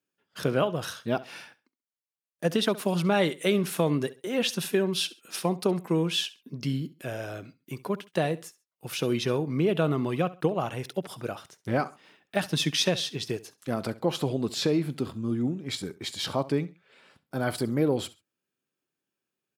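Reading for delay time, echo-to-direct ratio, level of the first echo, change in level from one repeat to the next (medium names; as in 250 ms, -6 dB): 67 ms, -18.0 dB, -18.5 dB, -11.5 dB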